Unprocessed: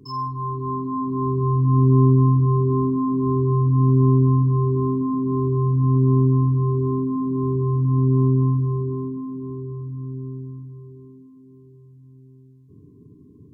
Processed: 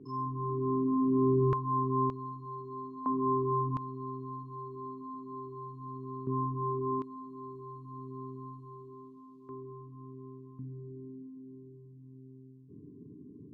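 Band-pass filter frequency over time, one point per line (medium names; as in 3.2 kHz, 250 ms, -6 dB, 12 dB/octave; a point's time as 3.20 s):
band-pass filter, Q 1
350 Hz
from 1.53 s 1.4 kHz
from 2.10 s 4.2 kHz
from 3.06 s 960 Hz
from 3.77 s 3.7 kHz
from 6.27 s 1.1 kHz
from 7.02 s 3.9 kHz
from 9.49 s 1.2 kHz
from 10.59 s 280 Hz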